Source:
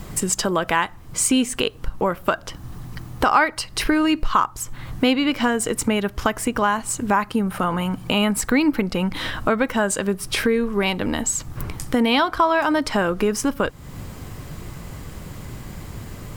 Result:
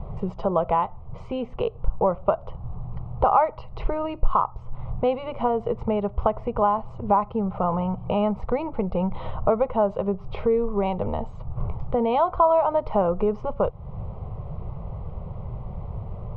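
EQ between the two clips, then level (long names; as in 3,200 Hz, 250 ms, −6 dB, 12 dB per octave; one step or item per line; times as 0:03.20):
low-pass filter 1,300 Hz 12 dB per octave
high-frequency loss of the air 270 metres
phaser with its sweep stopped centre 690 Hz, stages 4
+4.0 dB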